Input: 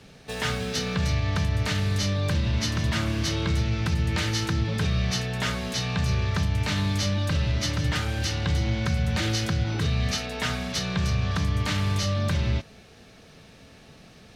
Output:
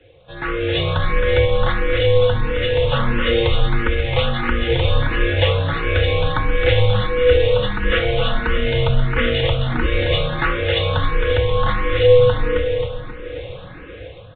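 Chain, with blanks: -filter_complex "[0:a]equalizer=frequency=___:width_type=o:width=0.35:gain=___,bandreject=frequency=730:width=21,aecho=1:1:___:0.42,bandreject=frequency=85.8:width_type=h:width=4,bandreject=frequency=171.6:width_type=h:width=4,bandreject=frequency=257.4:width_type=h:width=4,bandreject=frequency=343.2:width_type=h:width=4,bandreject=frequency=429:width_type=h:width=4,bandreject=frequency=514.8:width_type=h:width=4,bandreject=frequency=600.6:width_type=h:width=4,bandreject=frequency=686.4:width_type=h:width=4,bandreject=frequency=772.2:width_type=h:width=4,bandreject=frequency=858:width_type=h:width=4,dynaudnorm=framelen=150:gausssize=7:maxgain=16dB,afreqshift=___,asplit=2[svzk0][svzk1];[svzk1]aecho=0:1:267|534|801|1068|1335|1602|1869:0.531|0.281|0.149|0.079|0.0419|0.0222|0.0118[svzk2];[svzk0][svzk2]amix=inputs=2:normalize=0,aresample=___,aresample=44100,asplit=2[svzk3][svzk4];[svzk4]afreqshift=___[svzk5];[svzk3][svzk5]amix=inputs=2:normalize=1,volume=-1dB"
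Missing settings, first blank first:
600, 14.5, 5.1, -92, 8000, 1.5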